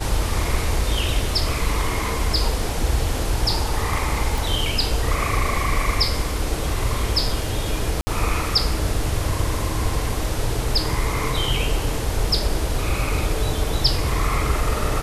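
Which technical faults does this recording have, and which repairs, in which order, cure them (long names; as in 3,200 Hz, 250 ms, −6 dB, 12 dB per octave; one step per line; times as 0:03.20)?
0:04.38: click
0:08.01–0:08.07: drop-out 60 ms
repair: click removal
repair the gap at 0:08.01, 60 ms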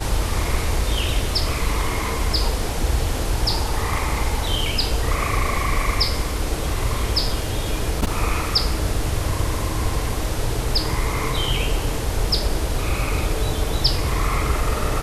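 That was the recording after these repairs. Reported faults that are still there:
none of them is left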